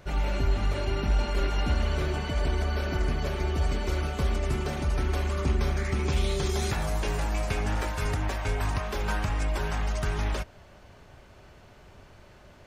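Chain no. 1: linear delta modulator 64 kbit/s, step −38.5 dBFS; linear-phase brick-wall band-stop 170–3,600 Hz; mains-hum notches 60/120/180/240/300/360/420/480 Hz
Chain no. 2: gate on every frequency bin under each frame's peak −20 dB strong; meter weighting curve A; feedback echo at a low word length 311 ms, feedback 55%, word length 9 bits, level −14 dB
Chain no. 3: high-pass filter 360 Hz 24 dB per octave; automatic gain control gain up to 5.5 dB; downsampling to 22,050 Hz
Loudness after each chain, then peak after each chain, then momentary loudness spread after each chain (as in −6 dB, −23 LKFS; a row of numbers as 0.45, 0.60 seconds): −31.5, −39.0, −29.5 LKFS; −16.5, −22.5, −13.5 dBFS; 20, 20, 3 LU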